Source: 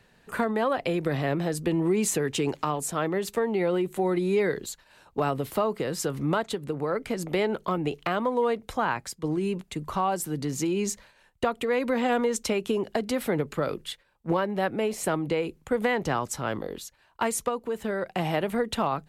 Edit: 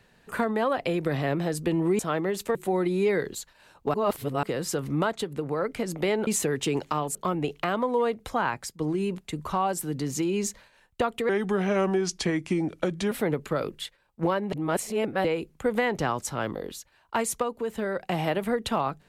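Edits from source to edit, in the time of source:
1.99–2.87 move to 7.58
3.43–3.86 cut
5.25–5.74 reverse
11.72–13.18 speed 80%
14.59–15.31 reverse

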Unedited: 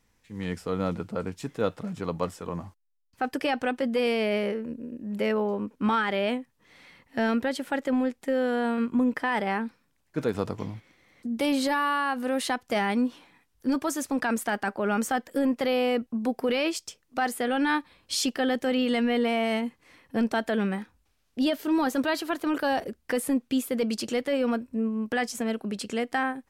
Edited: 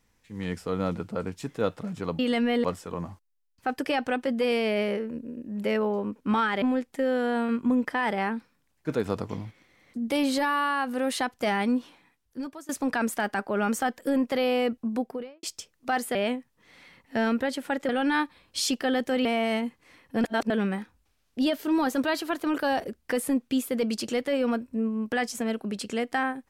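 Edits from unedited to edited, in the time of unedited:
6.17–7.91 move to 17.44
13.07–13.98 fade out, to -21 dB
16.15–16.72 studio fade out
18.8–19.25 move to 2.19
20.24–20.5 reverse

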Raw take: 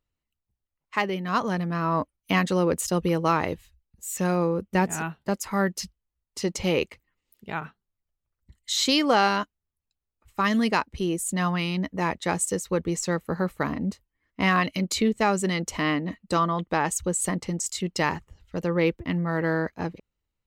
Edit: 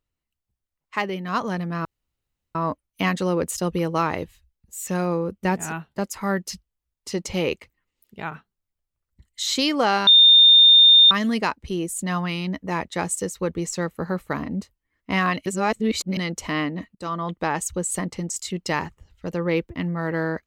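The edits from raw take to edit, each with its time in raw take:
1.85 insert room tone 0.70 s
9.37–10.41 bleep 3630 Hz -8.5 dBFS
14.76–15.47 reverse
16.25–16.6 fade in, from -16 dB

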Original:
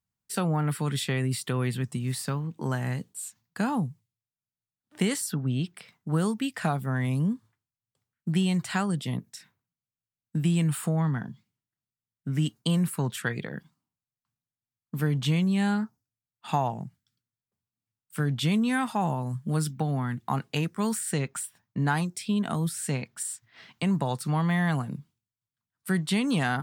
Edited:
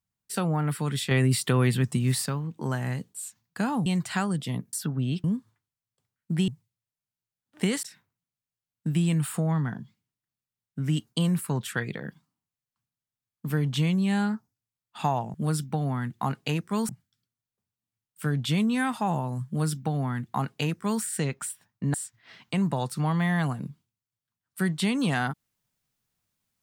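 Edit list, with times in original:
1.11–2.26 gain +5.5 dB
3.86–5.21 swap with 8.45–9.32
5.72–7.21 cut
19.41–20.96 copy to 16.83
21.88–23.23 cut

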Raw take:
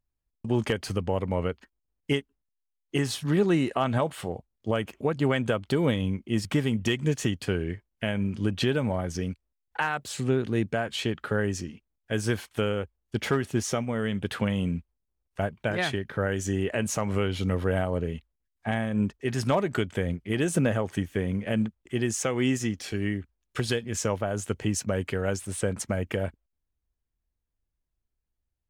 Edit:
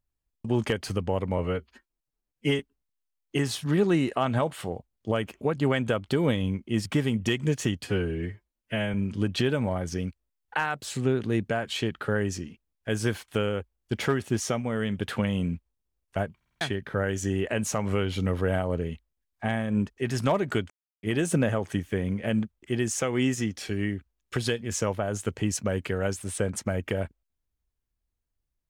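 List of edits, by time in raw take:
1.38–2.19 stretch 1.5×
7.44–8.17 stretch 1.5×
15.59 stutter in place 0.05 s, 5 plays
19.93–20.26 mute

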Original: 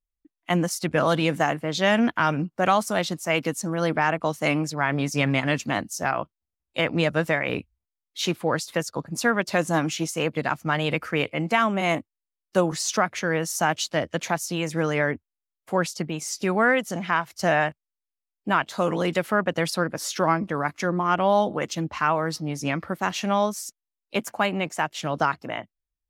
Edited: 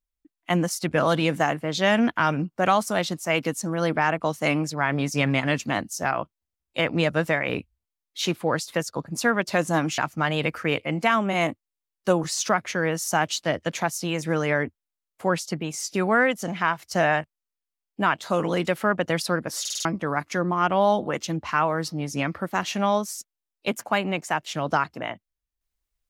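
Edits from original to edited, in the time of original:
9.98–10.46 cut
20.08 stutter in place 0.05 s, 5 plays

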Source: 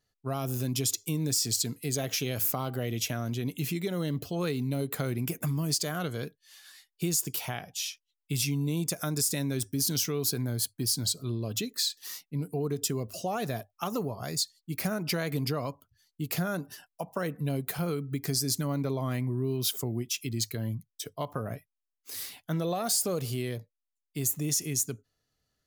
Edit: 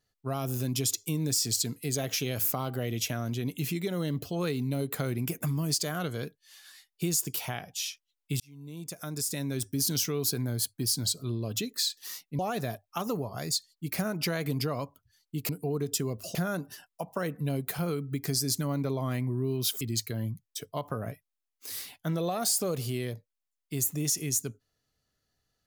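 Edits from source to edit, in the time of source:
8.4–9.75 fade in
12.39–13.25 move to 16.35
19.81–20.25 cut

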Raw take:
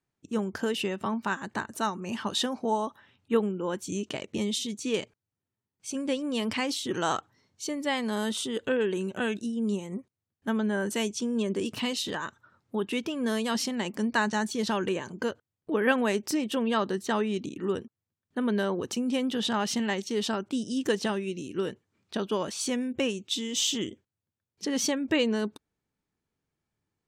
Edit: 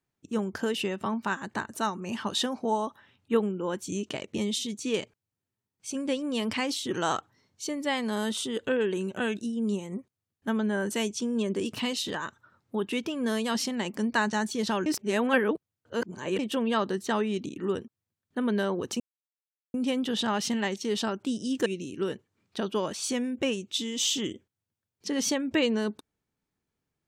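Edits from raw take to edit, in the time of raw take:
14.86–16.39 reverse
19 insert silence 0.74 s
20.92–21.23 cut

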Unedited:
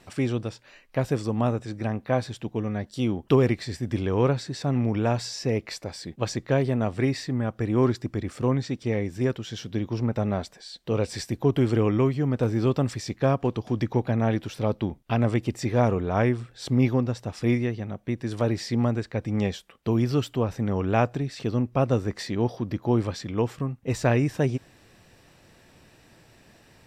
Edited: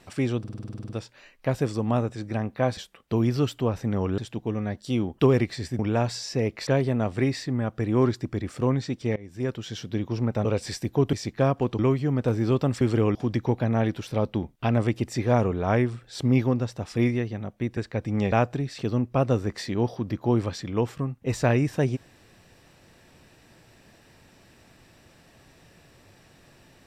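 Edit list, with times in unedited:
0.39 stutter 0.05 s, 11 plays
3.88–4.89 cut
5.77–6.48 cut
8.97–9.43 fade in linear, from -22.5 dB
10.26–10.92 cut
11.6–11.94 swap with 12.96–13.62
18.24–18.97 cut
19.52–20.93 move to 2.27

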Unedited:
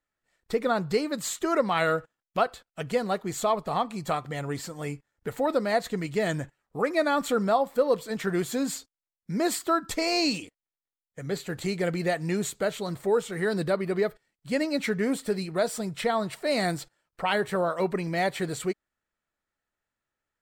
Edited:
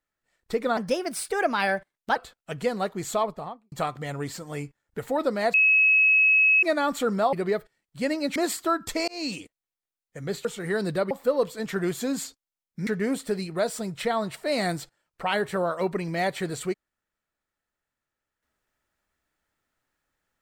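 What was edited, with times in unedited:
0.77–2.45 speed 121%
3.44–4.01 studio fade out
5.83–6.92 bleep 2570 Hz -15.5 dBFS
7.62–9.38 swap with 13.83–14.86
10.1–10.41 fade in
11.47–13.17 cut

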